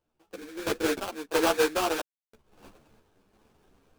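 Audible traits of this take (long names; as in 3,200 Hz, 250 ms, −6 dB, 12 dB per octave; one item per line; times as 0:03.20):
a quantiser's noise floor 12 bits, dither none
sample-and-hold tremolo 3 Hz, depth 100%
aliases and images of a low sample rate 2,000 Hz, jitter 20%
a shimmering, thickened sound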